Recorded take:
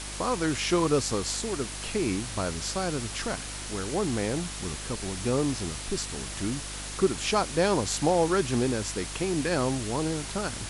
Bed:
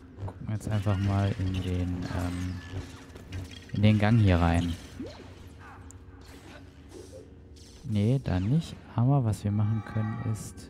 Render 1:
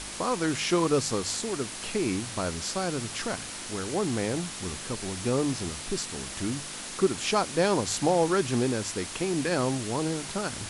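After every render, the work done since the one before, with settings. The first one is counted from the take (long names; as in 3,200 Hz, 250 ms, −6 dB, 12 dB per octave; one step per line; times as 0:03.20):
hum removal 50 Hz, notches 3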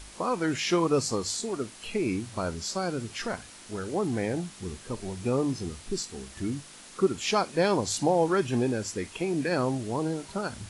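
noise reduction from a noise print 10 dB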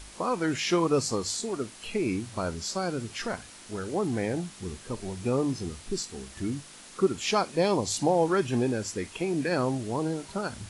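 0:07.55–0:07.99: parametric band 1,500 Hz −14.5 dB → −4 dB 0.36 octaves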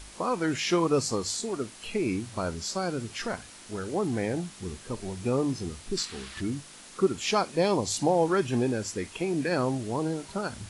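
0:05.97–0:06.41: flat-topped bell 2,200 Hz +8 dB 2.4 octaves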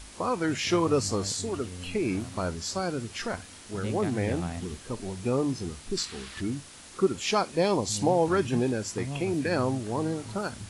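mix in bed −11.5 dB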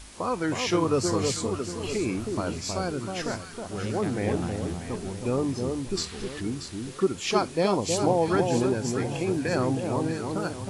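delay that swaps between a low-pass and a high-pass 317 ms, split 1,100 Hz, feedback 57%, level −4 dB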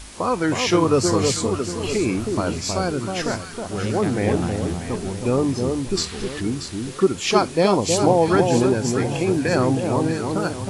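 level +6.5 dB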